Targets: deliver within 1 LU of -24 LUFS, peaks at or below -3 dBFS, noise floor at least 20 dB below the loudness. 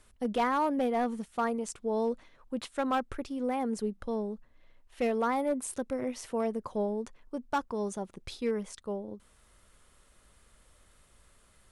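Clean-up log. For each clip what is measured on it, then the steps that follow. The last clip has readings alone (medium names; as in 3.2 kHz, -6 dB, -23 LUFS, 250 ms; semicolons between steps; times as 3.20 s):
clipped samples 0.6%; clipping level -22.5 dBFS; loudness -33.0 LUFS; peak level -22.5 dBFS; loudness target -24.0 LUFS
-> clip repair -22.5 dBFS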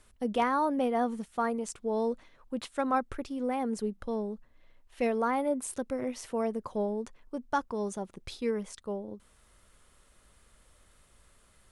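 clipped samples 0.0%; loudness -32.5 LUFS; peak level -16.0 dBFS; loudness target -24.0 LUFS
-> trim +8.5 dB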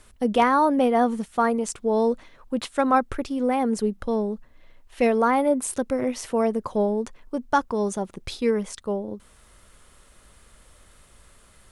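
loudness -24.0 LUFS; peak level -7.5 dBFS; noise floor -55 dBFS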